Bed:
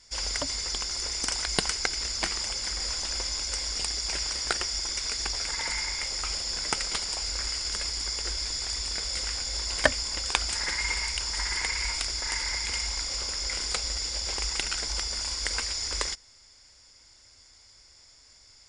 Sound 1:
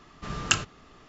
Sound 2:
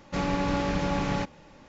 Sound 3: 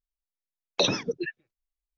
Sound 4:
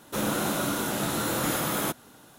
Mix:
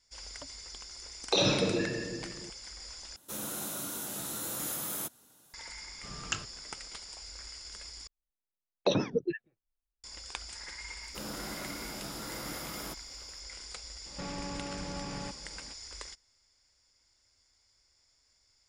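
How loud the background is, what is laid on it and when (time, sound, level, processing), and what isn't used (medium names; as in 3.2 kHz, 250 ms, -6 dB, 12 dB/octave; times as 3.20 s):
bed -14.5 dB
0.53 s: add 3 -6 dB + simulated room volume 2200 m³, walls mixed, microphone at 3.8 m
3.16 s: replace with 4 -15 dB + tone controls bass 0 dB, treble +12 dB
5.81 s: add 1 -11 dB
8.07 s: replace with 3 -6 dB + tilt shelf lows +7 dB, about 1.5 kHz
11.02 s: add 4 -14 dB
14.06 s: add 2 -2.5 dB + compression 4:1, threshold -35 dBFS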